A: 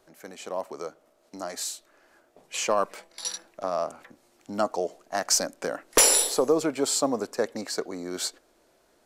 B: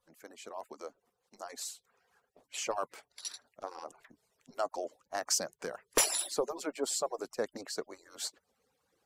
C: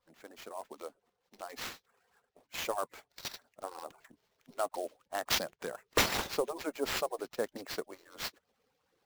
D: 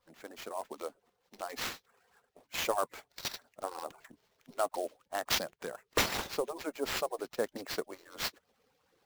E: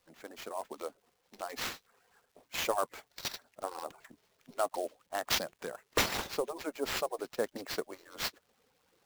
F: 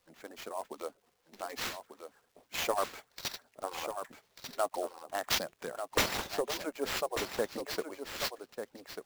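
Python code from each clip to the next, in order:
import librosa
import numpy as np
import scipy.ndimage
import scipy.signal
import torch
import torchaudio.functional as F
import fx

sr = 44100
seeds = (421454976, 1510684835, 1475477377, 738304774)

y1 = fx.hpss_only(x, sr, part='percussive')
y1 = y1 * librosa.db_to_amplitude(-7.5)
y2 = fx.sample_hold(y1, sr, seeds[0], rate_hz=9500.0, jitter_pct=20)
y3 = fx.rider(y2, sr, range_db=4, speed_s=2.0)
y4 = fx.dmg_crackle(y3, sr, seeds[1], per_s=430.0, level_db=-61.0)
y5 = y4 + 10.0 ** (-8.0 / 20.0) * np.pad(y4, (int(1192 * sr / 1000.0), 0))[:len(y4)]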